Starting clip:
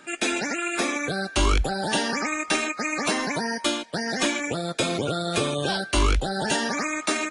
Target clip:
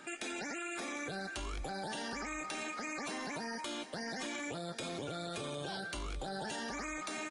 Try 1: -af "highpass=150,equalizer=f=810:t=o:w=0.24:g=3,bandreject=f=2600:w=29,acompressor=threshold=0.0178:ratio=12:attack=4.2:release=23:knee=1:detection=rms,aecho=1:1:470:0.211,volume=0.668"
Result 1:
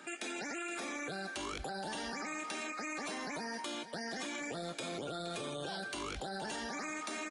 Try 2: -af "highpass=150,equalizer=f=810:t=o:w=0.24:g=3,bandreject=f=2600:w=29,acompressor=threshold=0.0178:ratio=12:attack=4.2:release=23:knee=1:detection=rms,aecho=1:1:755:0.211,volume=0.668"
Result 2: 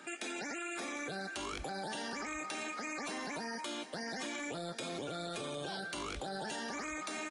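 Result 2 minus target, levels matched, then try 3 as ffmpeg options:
125 Hz band -3.0 dB
-af "equalizer=f=810:t=o:w=0.24:g=3,bandreject=f=2600:w=29,acompressor=threshold=0.0178:ratio=12:attack=4.2:release=23:knee=1:detection=rms,aecho=1:1:755:0.211,volume=0.668"

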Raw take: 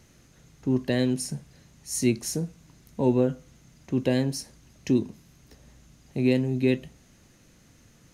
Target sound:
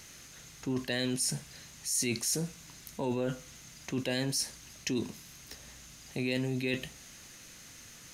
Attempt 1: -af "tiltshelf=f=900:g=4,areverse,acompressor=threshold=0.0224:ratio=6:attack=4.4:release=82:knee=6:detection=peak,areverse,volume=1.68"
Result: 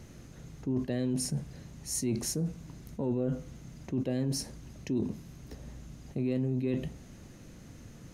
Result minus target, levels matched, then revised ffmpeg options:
1 kHz band -5.0 dB
-af "tiltshelf=f=900:g=-7.5,areverse,acompressor=threshold=0.0224:ratio=6:attack=4.4:release=82:knee=6:detection=peak,areverse,volume=1.68"

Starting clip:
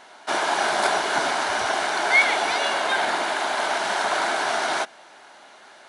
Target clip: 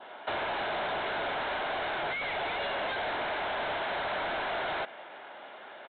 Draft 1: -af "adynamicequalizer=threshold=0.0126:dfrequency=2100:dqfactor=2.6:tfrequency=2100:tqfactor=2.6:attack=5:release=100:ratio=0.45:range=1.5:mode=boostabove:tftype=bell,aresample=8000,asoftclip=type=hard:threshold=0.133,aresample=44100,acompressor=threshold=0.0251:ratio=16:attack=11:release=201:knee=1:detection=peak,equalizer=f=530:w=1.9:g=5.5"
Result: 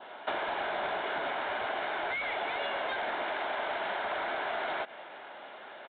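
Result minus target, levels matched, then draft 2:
hard clipper: distortion -6 dB
-af "adynamicequalizer=threshold=0.0126:dfrequency=2100:dqfactor=2.6:tfrequency=2100:tqfactor=2.6:attack=5:release=100:ratio=0.45:range=1.5:mode=boostabove:tftype=bell,aresample=8000,asoftclip=type=hard:threshold=0.0473,aresample=44100,acompressor=threshold=0.0251:ratio=16:attack=11:release=201:knee=1:detection=peak,equalizer=f=530:w=1.9:g=5.5"

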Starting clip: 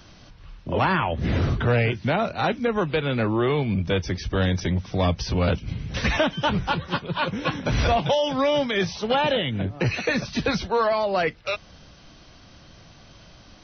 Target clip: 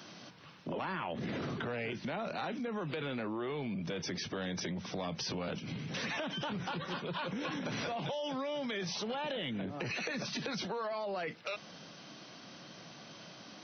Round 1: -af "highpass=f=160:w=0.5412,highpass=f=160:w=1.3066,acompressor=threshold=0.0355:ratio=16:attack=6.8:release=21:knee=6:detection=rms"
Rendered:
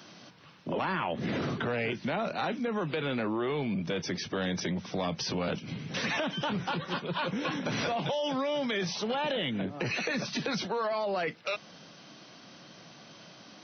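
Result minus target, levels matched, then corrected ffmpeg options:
compression: peak gain reduction -6.5 dB
-af "highpass=f=160:w=0.5412,highpass=f=160:w=1.3066,acompressor=threshold=0.0158:ratio=16:attack=6.8:release=21:knee=6:detection=rms"

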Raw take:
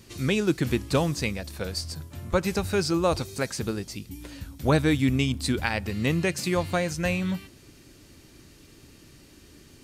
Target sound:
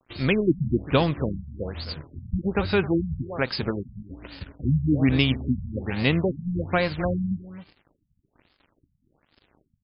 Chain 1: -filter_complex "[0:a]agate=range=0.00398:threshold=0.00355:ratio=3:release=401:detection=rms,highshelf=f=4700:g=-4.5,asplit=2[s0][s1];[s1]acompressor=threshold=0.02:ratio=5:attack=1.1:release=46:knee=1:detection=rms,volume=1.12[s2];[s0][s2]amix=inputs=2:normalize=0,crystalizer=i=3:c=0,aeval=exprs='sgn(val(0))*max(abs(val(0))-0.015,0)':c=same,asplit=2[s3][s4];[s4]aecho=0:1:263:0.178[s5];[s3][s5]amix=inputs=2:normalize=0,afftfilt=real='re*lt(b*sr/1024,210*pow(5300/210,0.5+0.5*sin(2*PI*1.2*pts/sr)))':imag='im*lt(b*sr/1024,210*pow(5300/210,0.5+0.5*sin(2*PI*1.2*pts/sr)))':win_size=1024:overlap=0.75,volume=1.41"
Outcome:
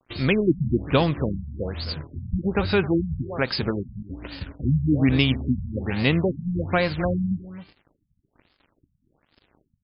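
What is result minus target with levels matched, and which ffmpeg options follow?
compression: peak gain reduction -7.5 dB
-filter_complex "[0:a]agate=range=0.00398:threshold=0.00355:ratio=3:release=401:detection=rms,highshelf=f=4700:g=-4.5,asplit=2[s0][s1];[s1]acompressor=threshold=0.00668:ratio=5:attack=1.1:release=46:knee=1:detection=rms,volume=1.12[s2];[s0][s2]amix=inputs=2:normalize=0,crystalizer=i=3:c=0,aeval=exprs='sgn(val(0))*max(abs(val(0))-0.015,0)':c=same,asplit=2[s3][s4];[s4]aecho=0:1:263:0.178[s5];[s3][s5]amix=inputs=2:normalize=0,afftfilt=real='re*lt(b*sr/1024,210*pow(5300/210,0.5+0.5*sin(2*PI*1.2*pts/sr)))':imag='im*lt(b*sr/1024,210*pow(5300/210,0.5+0.5*sin(2*PI*1.2*pts/sr)))':win_size=1024:overlap=0.75,volume=1.41"

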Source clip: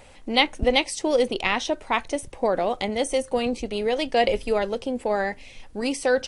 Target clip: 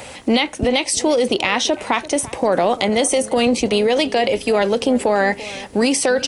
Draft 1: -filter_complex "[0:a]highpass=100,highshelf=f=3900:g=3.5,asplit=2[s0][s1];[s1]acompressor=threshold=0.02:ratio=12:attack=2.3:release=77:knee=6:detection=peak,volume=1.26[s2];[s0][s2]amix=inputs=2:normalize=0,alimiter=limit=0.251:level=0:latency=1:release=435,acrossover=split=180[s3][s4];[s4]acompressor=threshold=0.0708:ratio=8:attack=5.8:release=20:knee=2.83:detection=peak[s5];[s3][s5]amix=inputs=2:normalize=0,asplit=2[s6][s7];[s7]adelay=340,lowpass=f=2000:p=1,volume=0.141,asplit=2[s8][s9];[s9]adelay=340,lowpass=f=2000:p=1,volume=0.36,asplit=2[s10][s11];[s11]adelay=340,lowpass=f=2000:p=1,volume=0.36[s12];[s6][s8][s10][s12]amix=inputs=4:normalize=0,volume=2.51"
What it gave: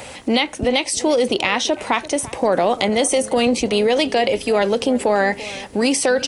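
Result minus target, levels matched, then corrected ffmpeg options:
compression: peak gain reduction +11 dB
-filter_complex "[0:a]highpass=100,highshelf=f=3900:g=3.5,asplit=2[s0][s1];[s1]acompressor=threshold=0.0794:ratio=12:attack=2.3:release=77:knee=6:detection=peak,volume=1.26[s2];[s0][s2]amix=inputs=2:normalize=0,alimiter=limit=0.251:level=0:latency=1:release=435,acrossover=split=180[s3][s4];[s4]acompressor=threshold=0.0708:ratio=8:attack=5.8:release=20:knee=2.83:detection=peak[s5];[s3][s5]amix=inputs=2:normalize=0,asplit=2[s6][s7];[s7]adelay=340,lowpass=f=2000:p=1,volume=0.141,asplit=2[s8][s9];[s9]adelay=340,lowpass=f=2000:p=1,volume=0.36,asplit=2[s10][s11];[s11]adelay=340,lowpass=f=2000:p=1,volume=0.36[s12];[s6][s8][s10][s12]amix=inputs=4:normalize=0,volume=2.51"

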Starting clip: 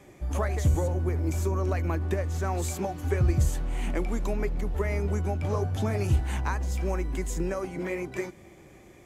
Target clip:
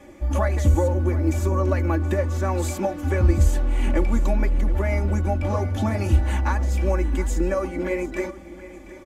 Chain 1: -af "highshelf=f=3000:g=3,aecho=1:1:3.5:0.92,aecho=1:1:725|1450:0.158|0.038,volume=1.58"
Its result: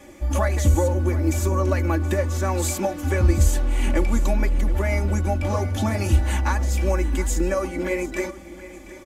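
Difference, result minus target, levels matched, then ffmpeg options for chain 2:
8 kHz band +7.0 dB
-af "highshelf=f=3000:g=-5.5,aecho=1:1:3.5:0.92,aecho=1:1:725|1450:0.158|0.038,volume=1.58"

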